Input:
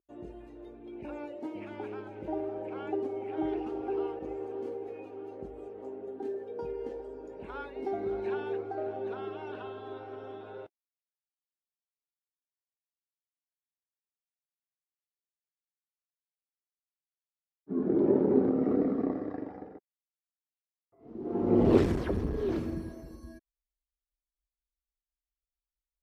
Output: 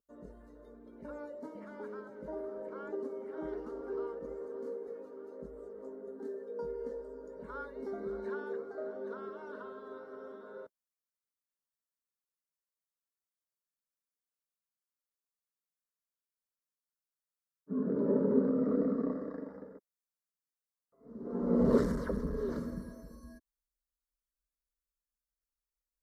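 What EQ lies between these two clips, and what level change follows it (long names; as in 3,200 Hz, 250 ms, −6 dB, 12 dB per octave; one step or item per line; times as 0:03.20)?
parametric band 3,300 Hz −8 dB 0.22 octaves
phaser with its sweep stopped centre 510 Hz, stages 8
0.0 dB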